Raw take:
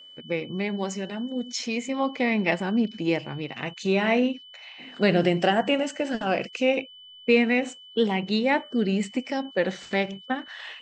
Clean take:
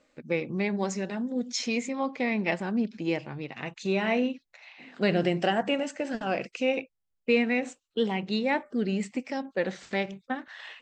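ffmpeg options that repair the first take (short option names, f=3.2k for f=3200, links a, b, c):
-af "bandreject=f=3k:w=30,asetnsamples=n=441:p=0,asendcmd='1.89 volume volume -4dB',volume=0dB"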